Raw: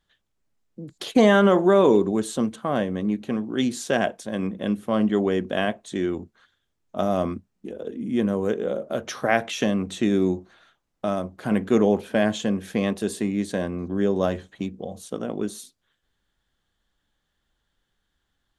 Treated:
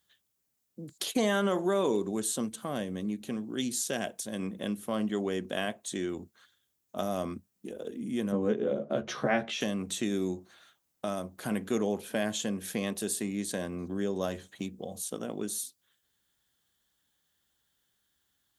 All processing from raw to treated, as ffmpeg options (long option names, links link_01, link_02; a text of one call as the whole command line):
ffmpeg -i in.wav -filter_complex "[0:a]asettb=1/sr,asplit=3[link_01][link_02][link_03];[link_01]atrim=end=2.484[link_04];[link_02]atrim=start=2.48:end=4.4,asetpts=PTS-STARTPTS,afade=type=in:duration=0.004:curve=qsin,afade=type=out:start_time=1.916:duration=0.004:curve=qsin,equalizer=frequency=1100:width_type=o:width=2.4:gain=-4.5,acompressor=mode=upward:threshold=-37dB:ratio=2.5:attack=3.2:release=140:knee=2.83:detection=peak[link_05];[link_03]atrim=start=4.396[link_06];[link_04][link_05]acrossfade=duration=0.004:curve1=hsin:curve2=qsin[link_07];[link_07][link_06]acrossfade=duration=0.004:curve1=qsin:curve2=hsin,asettb=1/sr,asplit=3[link_08][link_09][link_10];[link_08]atrim=end=8.324[link_11];[link_09]atrim=start=8.32:end=9.61,asetpts=PTS-STARTPTS,afade=type=in:duration=0.004:curve=qsin,afade=type=out:start_time=1.286:duration=0.004:curve=qsin,highpass=100,lowpass=3500,lowshelf=frequency=440:gain=9,asplit=2[link_12][link_13];[link_13]adelay=14,volume=-3dB[link_14];[link_12][link_14]amix=inputs=2:normalize=0,atrim=end_sample=56889[link_15];[link_10]atrim=start=9.606[link_16];[link_11][link_15]acrossfade=duration=0.004:curve1=hsin:curve2=qsin[link_17];[link_17][link_16]acrossfade=duration=0.004:curve1=qsin:curve2=hsin,highpass=78,aemphasis=mode=production:type=75fm,acompressor=threshold=-30dB:ratio=1.5,volume=-4.5dB" out.wav